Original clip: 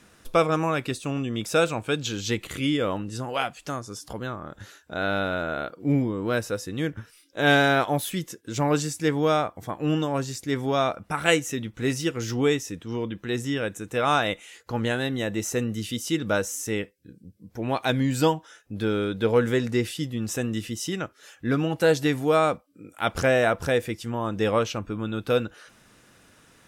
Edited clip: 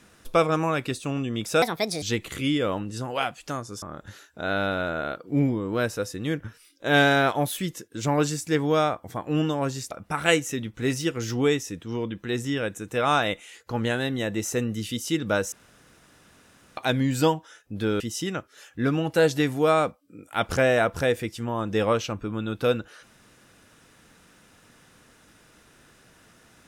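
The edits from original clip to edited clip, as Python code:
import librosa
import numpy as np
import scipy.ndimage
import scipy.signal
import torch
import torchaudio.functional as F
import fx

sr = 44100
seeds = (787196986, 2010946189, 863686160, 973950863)

y = fx.edit(x, sr, fx.speed_span(start_s=1.62, length_s=0.59, speed=1.47),
    fx.cut(start_s=4.01, length_s=0.34),
    fx.cut(start_s=10.44, length_s=0.47),
    fx.room_tone_fill(start_s=16.52, length_s=1.25),
    fx.cut(start_s=19.0, length_s=1.66), tone=tone)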